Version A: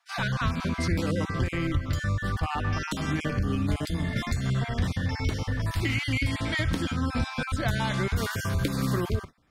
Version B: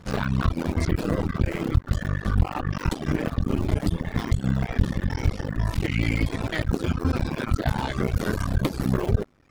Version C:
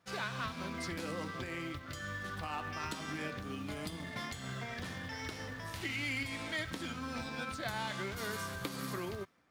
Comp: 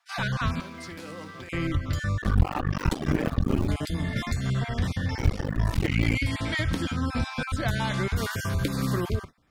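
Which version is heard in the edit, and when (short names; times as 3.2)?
A
0.61–1.49 from C
2.22–3.68 from B
5.18–6.15 from B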